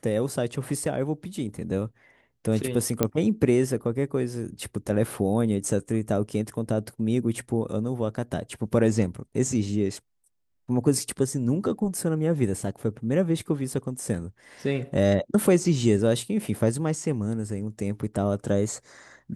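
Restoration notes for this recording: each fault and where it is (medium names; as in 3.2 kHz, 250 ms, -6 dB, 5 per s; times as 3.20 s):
3.03 s: pop -7 dBFS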